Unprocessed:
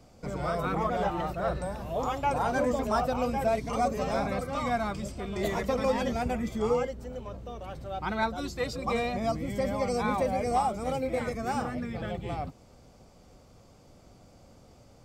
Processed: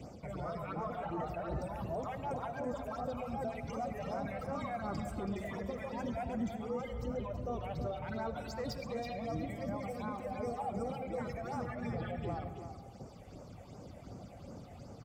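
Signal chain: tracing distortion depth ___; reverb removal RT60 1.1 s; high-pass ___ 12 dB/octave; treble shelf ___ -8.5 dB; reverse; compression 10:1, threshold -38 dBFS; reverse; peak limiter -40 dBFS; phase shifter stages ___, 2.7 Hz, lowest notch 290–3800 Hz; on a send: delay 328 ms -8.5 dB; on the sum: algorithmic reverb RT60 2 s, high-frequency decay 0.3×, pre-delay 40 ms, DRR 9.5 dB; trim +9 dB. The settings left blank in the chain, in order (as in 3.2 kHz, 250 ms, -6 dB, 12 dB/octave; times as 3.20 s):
0.045 ms, 69 Hz, 5.5 kHz, 6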